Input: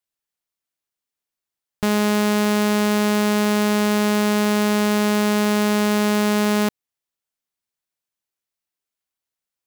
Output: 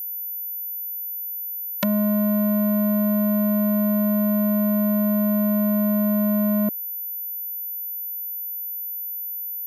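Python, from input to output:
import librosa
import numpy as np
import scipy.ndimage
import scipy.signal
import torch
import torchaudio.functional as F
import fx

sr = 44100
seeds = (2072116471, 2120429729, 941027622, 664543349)

y = fx.halfwave_hold(x, sr)
y = fx.env_lowpass_down(y, sr, base_hz=430.0, full_db=-17.0)
y = scipy.signal.sosfilt(scipy.signal.butter(2, 300.0, 'highpass', fs=sr, output='sos'), y)
y = fx.high_shelf(y, sr, hz=2200.0, db=9.5)
y = y + 10.0 ** (-29.0 / 20.0) * np.sin(2.0 * np.pi * 14000.0 * np.arange(len(y)) / sr)
y = y * librosa.db_to_amplitude(1.0)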